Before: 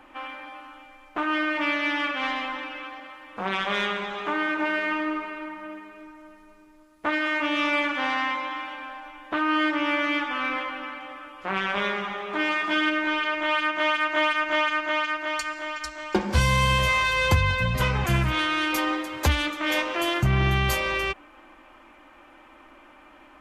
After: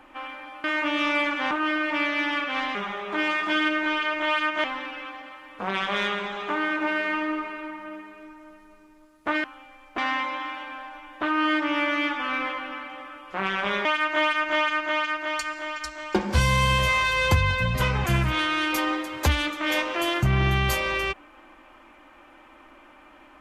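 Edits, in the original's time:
0.64–1.18 s: swap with 7.22–8.09 s
11.96–13.85 s: move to 2.42 s

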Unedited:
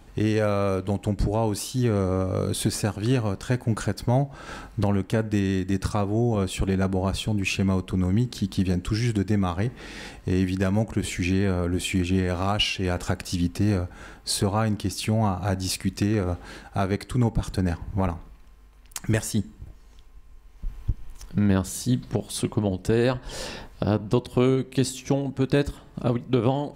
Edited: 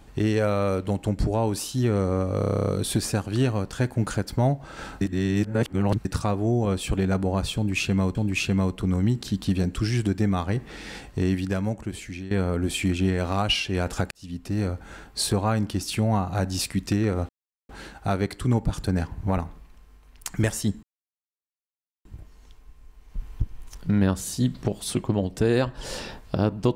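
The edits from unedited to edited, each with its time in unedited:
2.38 s: stutter 0.03 s, 11 plays
4.71–5.75 s: reverse
7.25–7.85 s: loop, 2 plays
10.29–11.41 s: fade out, to -15 dB
13.21–13.91 s: fade in
16.39 s: insert silence 0.40 s
19.53 s: insert silence 1.22 s

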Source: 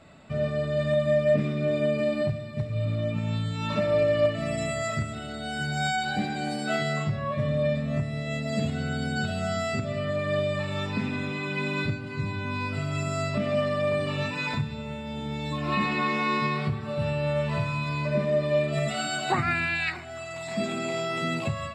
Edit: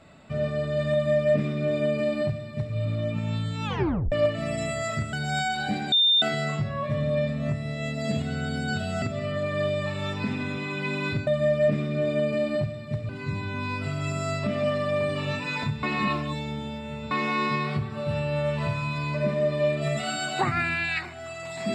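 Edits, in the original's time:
0.93–2.75 s: copy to 12.00 s
3.65 s: tape stop 0.47 s
5.13–5.61 s: delete
6.40–6.70 s: bleep 3.61 kHz -16.5 dBFS
9.50–9.75 s: delete
14.74–16.02 s: reverse

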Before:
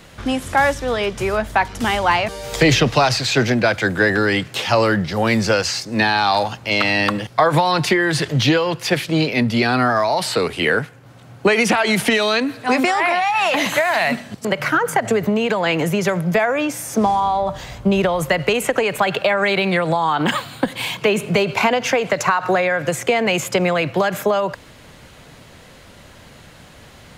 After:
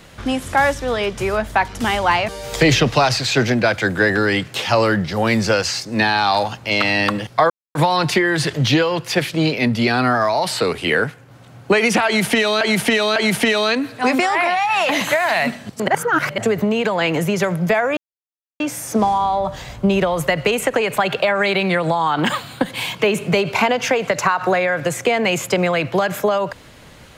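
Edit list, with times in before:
7.50 s: insert silence 0.25 s
11.81–12.36 s: loop, 3 plays
14.53–15.03 s: reverse
16.62 s: insert silence 0.63 s

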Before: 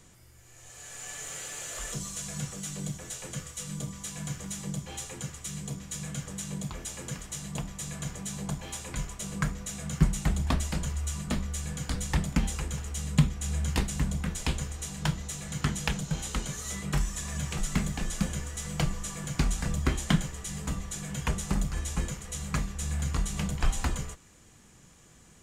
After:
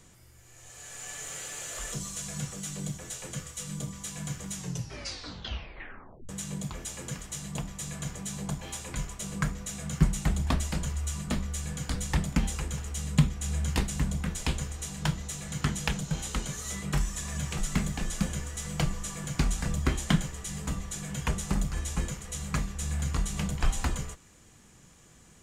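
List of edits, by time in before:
4.53 s: tape stop 1.76 s

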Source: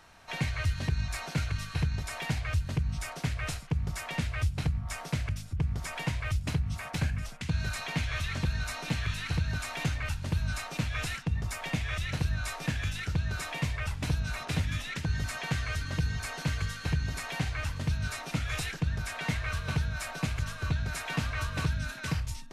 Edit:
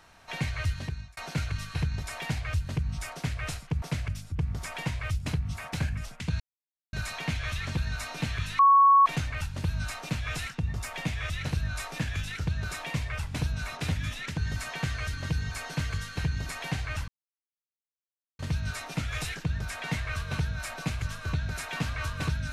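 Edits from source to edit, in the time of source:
0.69–1.17 s: fade out
3.82–5.03 s: delete
7.61 s: insert silence 0.53 s
9.27–9.74 s: bleep 1.11 kHz -14.5 dBFS
17.76 s: insert silence 1.31 s

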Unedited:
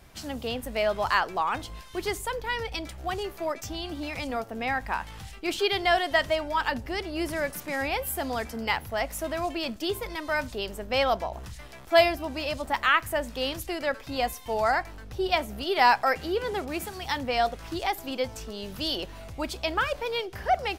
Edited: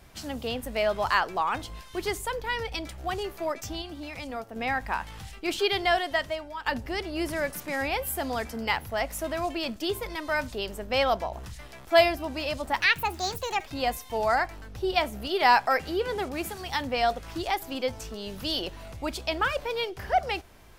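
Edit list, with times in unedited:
3.82–4.56 s: gain -4.5 dB
5.79–6.66 s: fade out, to -13.5 dB
12.80–14.02 s: speed 142%

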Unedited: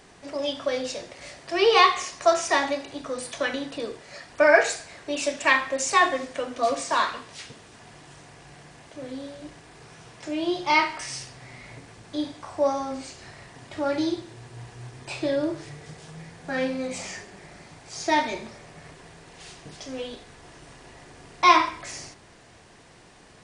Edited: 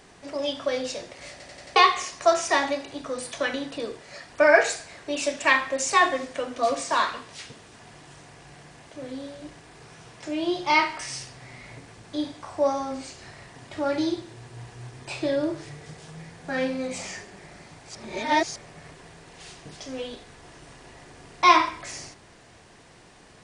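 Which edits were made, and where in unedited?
1.31 s: stutter in place 0.09 s, 5 plays
17.95–18.56 s: reverse

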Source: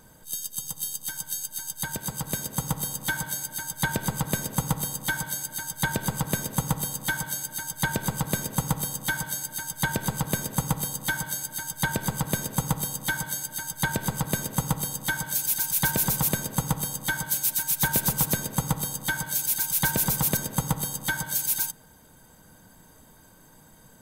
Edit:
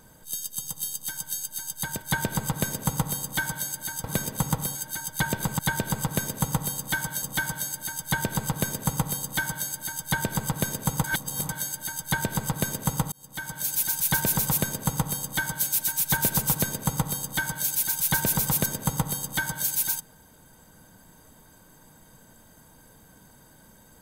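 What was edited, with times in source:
2.02–3.73 s: delete
5.75–7.38 s: swap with 8.22–8.93 s
12.75–13.20 s: reverse
14.83–15.50 s: fade in

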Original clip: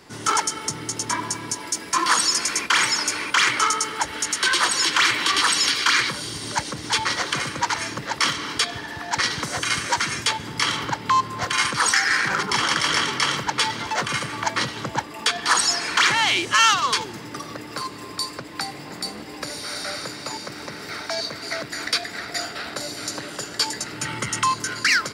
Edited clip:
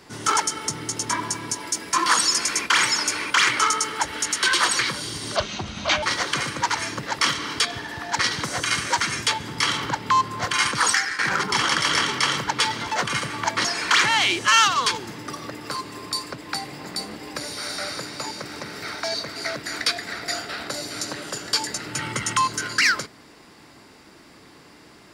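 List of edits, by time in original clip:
4.79–5.99 s: delete
6.56–7.02 s: speed 69%
11.89–12.18 s: fade out, to -15 dB
14.64–15.71 s: delete

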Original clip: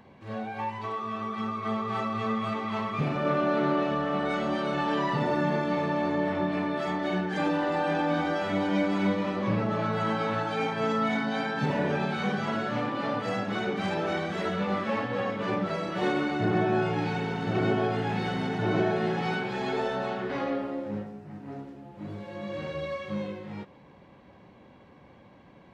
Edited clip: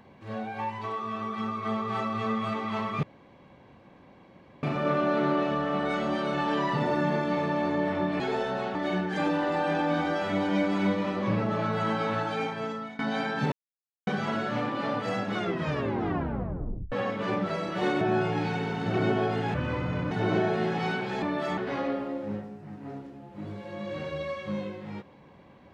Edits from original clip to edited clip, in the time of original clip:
3.03 s: insert room tone 1.60 s
6.60–6.95 s: swap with 19.65–20.20 s
10.48–11.19 s: fade out, to -21 dB
11.72–12.27 s: mute
13.55 s: tape stop 1.57 s
16.21–16.62 s: delete
18.15–18.54 s: speed 68%

